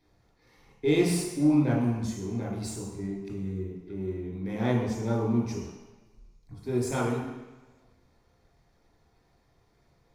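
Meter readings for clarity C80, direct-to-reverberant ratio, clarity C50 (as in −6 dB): 5.0 dB, −5.5 dB, 1.5 dB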